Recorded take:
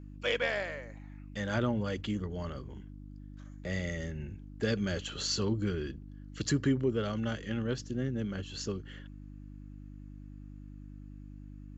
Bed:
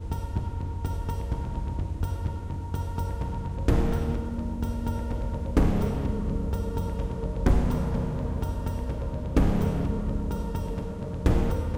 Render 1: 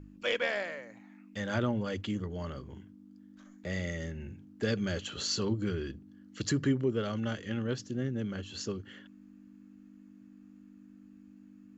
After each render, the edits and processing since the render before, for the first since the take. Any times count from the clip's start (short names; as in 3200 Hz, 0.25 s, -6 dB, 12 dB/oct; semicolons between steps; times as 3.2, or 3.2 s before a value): de-hum 50 Hz, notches 3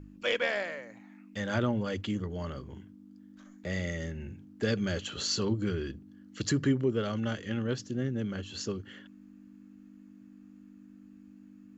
gain +1.5 dB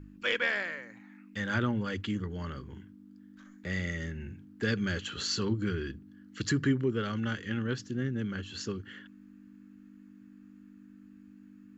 fifteen-band EQ 630 Hz -9 dB, 1600 Hz +5 dB, 6300 Hz -3 dB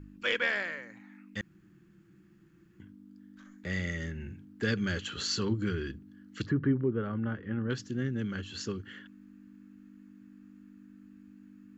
1.41–2.8 room tone; 6.46–7.7 LPF 1200 Hz